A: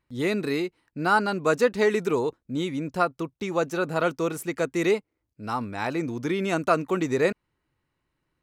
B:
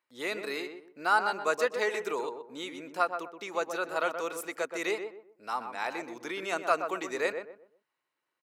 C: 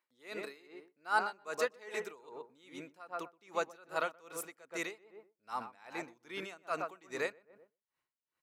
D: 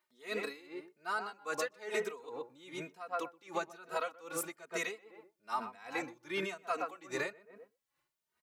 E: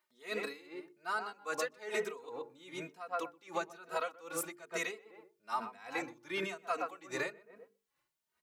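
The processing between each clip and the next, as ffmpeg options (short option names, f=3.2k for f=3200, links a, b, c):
-filter_complex "[0:a]highpass=590,asplit=2[a][b];[b]adelay=125,lowpass=f=1.2k:p=1,volume=-6dB,asplit=2[c][d];[d]adelay=125,lowpass=f=1.2k:p=1,volume=0.32,asplit=2[e][f];[f]adelay=125,lowpass=f=1.2k:p=1,volume=0.32,asplit=2[g][h];[h]adelay=125,lowpass=f=1.2k:p=1,volume=0.32[i];[c][e][g][i]amix=inputs=4:normalize=0[j];[a][j]amix=inputs=2:normalize=0,volume=-3dB"
-af "asubboost=boost=3:cutoff=180,aeval=exprs='val(0)*pow(10,-24*(0.5-0.5*cos(2*PI*2.5*n/s))/20)':c=same,volume=-1.5dB"
-filter_complex "[0:a]acompressor=threshold=-36dB:ratio=16,asplit=2[a][b];[b]adelay=2.9,afreqshift=1.1[c];[a][c]amix=inputs=2:normalize=1,volume=8.5dB"
-af "bandreject=f=50:t=h:w=6,bandreject=f=100:t=h:w=6,bandreject=f=150:t=h:w=6,bandreject=f=200:t=h:w=6,bandreject=f=250:t=h:w=6,bandreject=f=300:t=h:w=6,bandreject=f=350:t=h:w=6,bandreject=f=400:t=h:w=6,bandreject=f=450:t=h:w=6"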